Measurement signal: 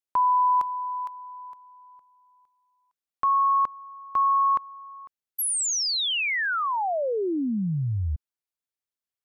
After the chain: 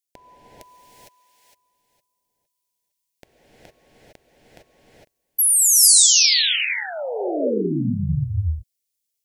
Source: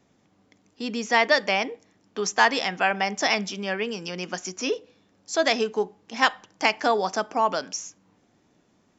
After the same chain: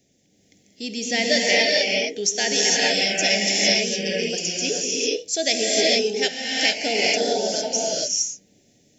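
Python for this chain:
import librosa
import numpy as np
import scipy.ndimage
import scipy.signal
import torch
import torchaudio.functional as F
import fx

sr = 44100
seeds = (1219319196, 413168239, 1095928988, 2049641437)

y = scipy.signal.sosfilt(scipy.signal.cheby1(2, 1.0, [600.0, 2100.0], 'bandstop', fs=sr, output='sos'), x)
y = fx.bass_treble(y, sr, bass_db=1, treble_db=12)
y = fx.rev_gated(y, sr, seeds[0], gate_ms=480, shape='rising', drr_db=-4.5)
y = F.gain(torch.from_numpy(y), -1.5).numpy()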